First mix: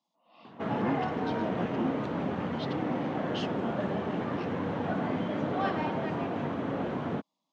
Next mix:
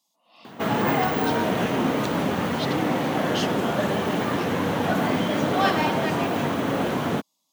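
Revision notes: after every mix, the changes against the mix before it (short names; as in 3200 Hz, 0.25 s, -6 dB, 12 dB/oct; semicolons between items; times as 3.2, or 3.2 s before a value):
background +6.5 dB; master: remove tape spacing loss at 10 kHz 28 dB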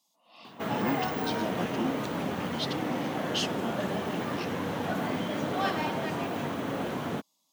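background -8.0 dB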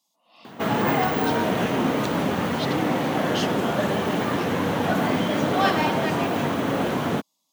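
background +8.5 dB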